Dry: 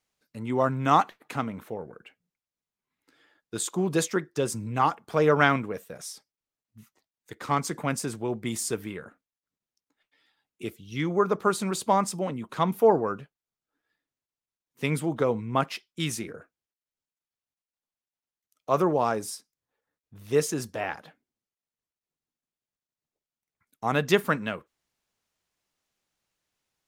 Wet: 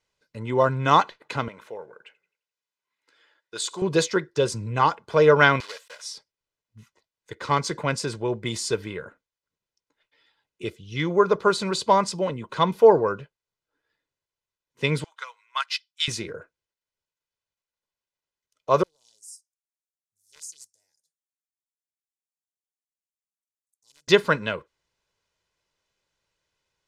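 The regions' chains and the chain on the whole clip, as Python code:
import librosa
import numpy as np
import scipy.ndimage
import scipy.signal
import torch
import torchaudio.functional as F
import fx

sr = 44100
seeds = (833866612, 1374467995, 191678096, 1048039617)

y = fx.chain(x, sr, fx.highpass(hz=920.0, slope=6),
    fx.echo_warbled(ms=86, feedback_pct=41, rate_hz=2.8, cents=116, wet_db=-23.0), at=(1.48, 3.82))
y = fx.chain(y, sr, fx.block_float(bits=3),
    fx.highpass(hz=1100.0, slope=12), at=(5.6, 6.04))
y = fx.chain(y, sr, fx.highpass(hz=1200.0, slope=24),
    fx.high_shelf(hz=3300.0, db=7.0),
    fx.upward_expand(threshold_db=-48.0, expansion=1.5), at=(15.04, 16.08))
y = fx.chain(y, sr, fx.cheby2_highpass(hz=3000.0, order=4, stop_db=50),
    fx.doppler_dist(depth_ms=0.76), at=(18.83, 24.08))
y = scipy.signal.sosfilt(scipy.signal.butter(2, 6400.0, 'lowpass', fs=sr, output='sos'), y)
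y = y + 0.49 * np.pad(y, (int(2.0 * sr / 1000.0), 0))[:len(y)]
y = fx.dynamic_eq(y, sr, hz=4300.0, q=2.0, threshold_db=-52.0, ratio=4.0, max_db=7)
y = F.gain(torch.from_numpy(y), 3.0).numpy()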